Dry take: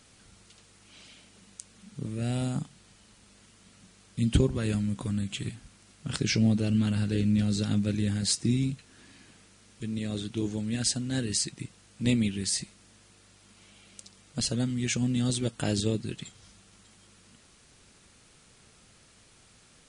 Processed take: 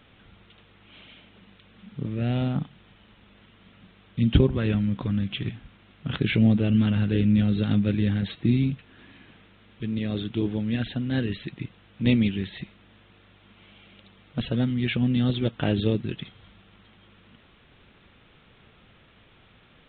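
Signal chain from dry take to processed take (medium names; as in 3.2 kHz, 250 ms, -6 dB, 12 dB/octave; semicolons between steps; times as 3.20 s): resampled via 8 kHz; trim +4.5 dB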